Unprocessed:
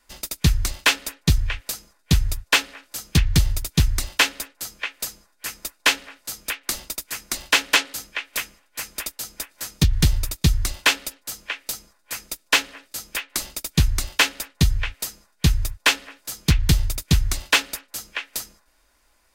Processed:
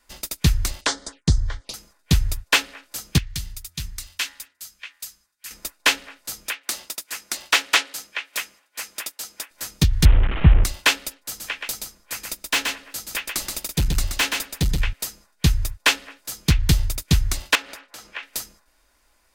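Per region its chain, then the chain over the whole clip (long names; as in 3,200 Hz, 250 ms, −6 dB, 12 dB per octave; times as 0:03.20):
0:00.81–0:01.74: Butterworth low-pass 10,000 Hz 48 dB per octave + downward expander −54 dBFS + phaser swept by the level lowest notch 190 Hz, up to 2,600 Hz, full sweep at −23.5 dBFS
0:03.18–0:05.51: guitar amp tone stack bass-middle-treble 5-5-5 + hum removal 84.33 Hz, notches 24
0:06.48–0:09.51: high-pass filter 450 Hz 6 dB per octave + highs frequency-modulated by the lows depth 0.19 ms
0:10.05–0:10.64: linear delta modulator 16 kbit/s, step −22.5 dBFS + low-shelf EQ 130 Hz +8 dB
0:11.18–0:14.93: gain into a clipping stage and back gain 16 dB + single-tap delay 126 ms −4.5 dB
0:17.55–0:18.23: downward compressor 2 to 1, threshold −38 dBFS + mid-hump overdrive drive 14 dB, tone 1,600 Hz, clips at −8 dBFS
whole clip: no processing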